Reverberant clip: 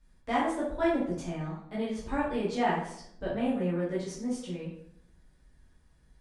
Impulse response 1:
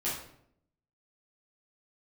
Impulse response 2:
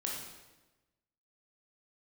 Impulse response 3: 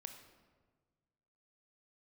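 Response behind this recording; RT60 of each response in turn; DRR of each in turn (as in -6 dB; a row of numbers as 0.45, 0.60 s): 1; 0.70, 1.1, 1.5 s; -9.0, -2.5, 5.5 dB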